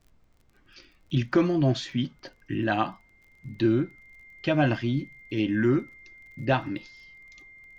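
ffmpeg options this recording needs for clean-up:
-af "adeclick=t=4,bandreject=f=2100:w=30,agate=range=0.0891:threshold=0.00251"

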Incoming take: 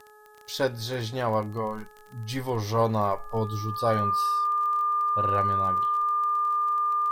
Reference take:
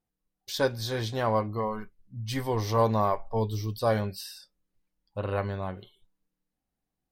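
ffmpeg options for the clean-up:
-af "adeclick=t=4,bandreject=f=423.8:t=h:w=4,bandreject=f=847.6:t=h:w=4,bandreject=f=1271.4:t=h:w=4,bandreject=f=1695.2:t=h:w=4,bandreject=f=1200:w=30,agate=range=0.0891:threshold=0.01"

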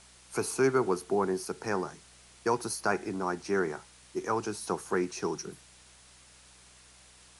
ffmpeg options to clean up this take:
-af "bandreject=f=62.2:t=h:w=4,bandreject=f=124.4:t=h:w=4,bandreject=f=186.6:t=h:w=4,afwtdn=0.002"

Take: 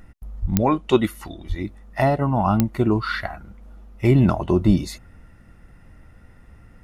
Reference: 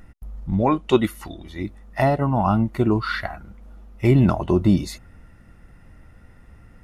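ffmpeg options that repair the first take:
-filter_complex "[0:a]adeclick=t=4,asplit=3[s0][s1][s2];[s0]afade=t=out:st=0.41:d=0.02[s3];[s1]highpass=f=140:w=0.5412,highpass=f=140:w=1.3066,afade=t=in:st=0.41:d=0.02,afade=t=out:st=0.53:d=0.02[s4];[s2]afade=t=in:st=0.53:d=0.02[s5];[s3][s4][s5]amix=inputs=3:normalize=0,asplit=3[s6][s7][s8];[s6]afade=t=out:st=1.48:d=0.02[s9];[s7]highpass=f=140:w=0.5412,highpass=f=140:w=1.3066,afade=t=in:st=1.48:d=0.02,afade=t=out:st=1.6:d=0.02[s10];[s8]afade=t=in:st=1.6:d=0.02[s11];[s9][s10][s11]amix=inputs=3:normalize=0,asplit=3[s12][s13][s14];[s12]afade=t=out:st=4.66:d=0.02[s15];[s13]highpass=f=140:w=0.5412,highpass=f=140:w=1.3066,afade=t=in:st=4.66:d=0.02,afade=t=out:st=4.78:d=0.02[s16];[s14]afade=t=in:st=4.78:d=0.02[s17];[s15][s16][s17]amix=inputs=3:normalize=0"

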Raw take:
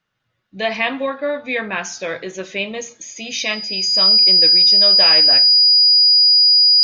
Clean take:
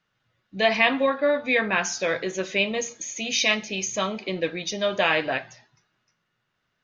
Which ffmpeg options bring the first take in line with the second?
-af "bandreject=f=4900:w=30,asetnsamples=n=441:p=0,asendcmd='6.19 volume volume 5.5dB',volume=1"

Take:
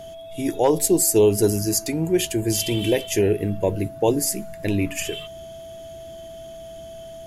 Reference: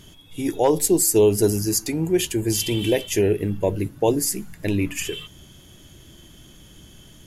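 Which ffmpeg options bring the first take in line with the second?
-af "bandreject=f=660:w=30"

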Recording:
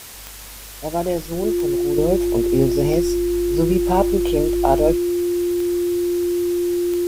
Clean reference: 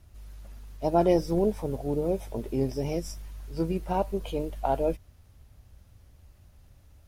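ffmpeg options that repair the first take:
-af "adeclick=t=4,bandreject=f=350:w=30,afwtdn=0.014,asetnsamples=n=441:p=0,asendcmd='1.98 volume volume -9dB',volume=1"

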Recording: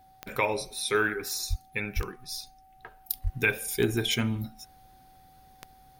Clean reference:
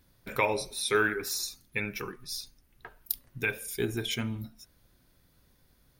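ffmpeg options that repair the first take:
-filter_complex "[0:a]adeclick=t=4,bandreject=f=760:w=30,asplit=3[s0][s1][s2];[s0]afade=t=out:st=1.49:d=0.02[s3];[s1]highpass=f=140:w=0.5412,highpass=f=140:w=1.3066,afade=t=in:st=1.49:d=0.02,afade=t=out:st=1.61:d=0.02[s4];[s2]afade=t=in:st=1.61:d=0.02[s5];[s3][s4][s5]amix=inputs=3:normalize=0,asplit=3[s6][s7][s8];[s6]afade=t=out:st=1.95:d=0.02[s9];[s7]highpass=f=140:w=0.5412,highpass=f=140:w=1.3066,afade=t=in:st=1.95:d=0.02,afade=t=out:st=2.07:d=0.02[s10];[s8]afade=t=in:st=2.07:d=0.02[s11];[s9][s10][s11]amix=inputs=3:normalize=0,asplit=3[s12][s13][s14];[s12]afade=t=out:st=3.23:d=0.02[s15];[s13]highpass=f=140:w=0.5412,highpass=f=140:w=1.3066,afade=t=in:st=3.23:d=0.02,afade=t=out:st=3.35:d=0.02[s16];[s14]afade=t=in:st=3.35:d=0.02[s17];[s15][s16][s17]amix=inputs=3:normalize=0,asetnsamples=n=441:p=0,asendcmd='3.22 volume volume -5dB',volume=1"

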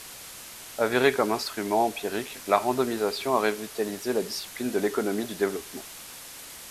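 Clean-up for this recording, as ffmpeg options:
-af "afwtdn=0.0089"

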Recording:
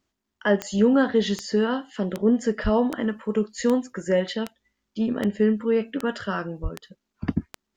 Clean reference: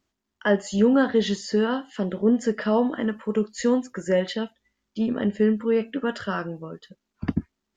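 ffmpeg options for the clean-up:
-filter_complex "[0:a]adeclick=t=4,asplit=3[s0][s1][s2];[s0]afade=t=out:st=2.63:d=0.02[s3];[s1]highpass=f=140:w=0.5412,highpass=f=140:w=1.3066,afade=t=in:st=2.63:d=0.02,afade=t=out:st=2.75:d=0.02[s4];[s2]afade=t=in:st=2.75:d=0.02[s5];[s3][s4][s5]amix=inputs=3:normalize=0,asplit=3[s6][s7][s8];[s6]afade=t=out:st=6.62:d=0.02[s9];[s7]highpass=f=140:w=0.5412,highpass=f=140:w=1.3066,afade=t=in:st=6.62:d=0.02,afade=t=out:st=6.74:d=0.02[s10];[s8]afade=t=in:st=6.74:d=0.02[s11];[s9][s10][s11]amix=inputs=3:normalize=0"

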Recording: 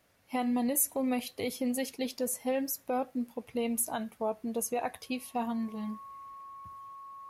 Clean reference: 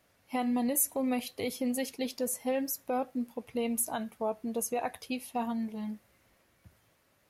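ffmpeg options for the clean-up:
-af "bandreject=f=1100:w=30"

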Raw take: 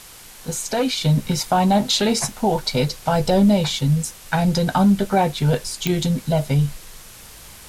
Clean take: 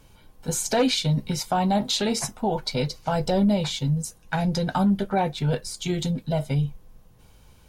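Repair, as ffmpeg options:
-af "adeclick=t=4,afwtdn=0.0089,asetnsamples=n=441:p=0,asendcmd='1.01 volume volume -5.5dB',volume=1"

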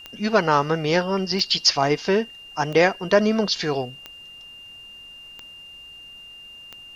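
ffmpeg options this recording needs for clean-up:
-af "adeclick=t=4,bandreject=f=2800:w=30,agate=range=0.0891:threshold=0.0178"

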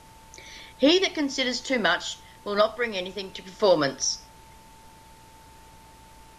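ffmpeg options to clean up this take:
-af "bandreject=f=58.2:t=h:w=4,bandreject=f=116.4:t=h:w=4,bandreject=f=174.6:t=h:w=4,bandreject=f=890:w=30,afftdn=nr=19:nf=-51"

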